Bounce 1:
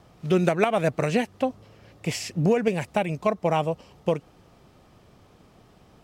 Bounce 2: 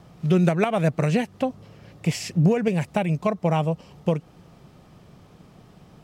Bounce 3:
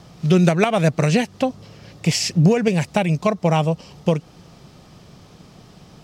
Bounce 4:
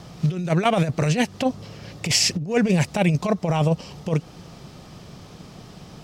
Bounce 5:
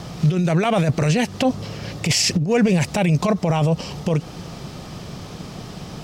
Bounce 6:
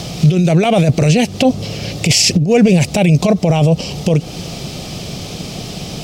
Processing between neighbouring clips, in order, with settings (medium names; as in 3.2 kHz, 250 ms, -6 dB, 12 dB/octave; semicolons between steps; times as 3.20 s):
peaking EQ 160 Hz +8 dB 0.74 oct; in parallel at -2 dB: compression, threshold -27 dBFS, peak gain reduction 14.5 dB; on the sum: trim -3 dB
peaking EQ 5.2 kHz +8.5 dB 1.4 oct; trim +4 dB
compressor with a negative ratio -19 dBFS, ratio -0.5
peak limiter -17.5 dBFS, peak gain reduction 11 dB; trim +8 dB
high-order bell 1.3 kHz -9 dB 1.3 oct; tape noise reduction on one side only encoder only; trim +7 dB